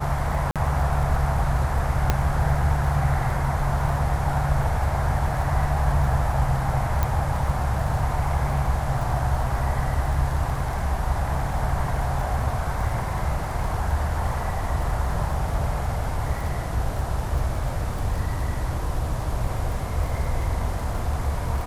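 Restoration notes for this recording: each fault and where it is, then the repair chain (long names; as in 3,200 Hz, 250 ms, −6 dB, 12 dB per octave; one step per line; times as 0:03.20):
surface crackle 30 per second −31 dBFS
0:00.51–0:00.56: drop-out 47 ms
0:02.10: click −6 dBFS
0:07.03: click −10 dBFS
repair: click removal
repair the gap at 0:00.51, 47 ms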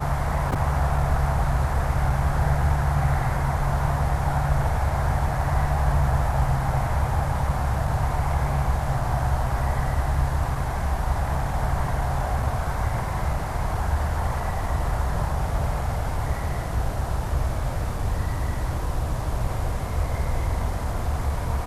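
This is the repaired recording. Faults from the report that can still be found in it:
none of them is left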